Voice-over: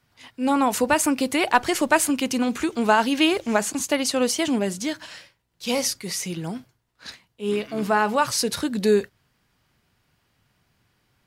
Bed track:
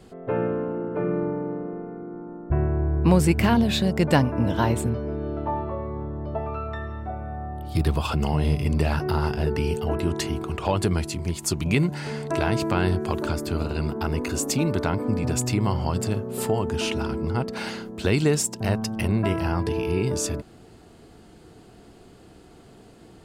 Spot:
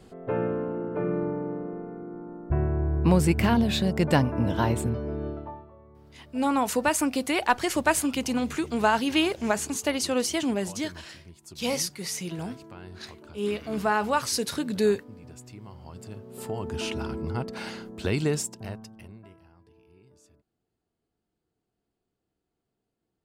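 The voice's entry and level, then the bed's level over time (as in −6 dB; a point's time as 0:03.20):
5.95 s, −4.0 dB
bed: 0:05.27 −2.5 dB
0:05.71 −21.5 dB
0:15.72 −21.5 dB
0:16.80 −5 dB
0:18.37 −5 dB
0:19.52 −33.5 dB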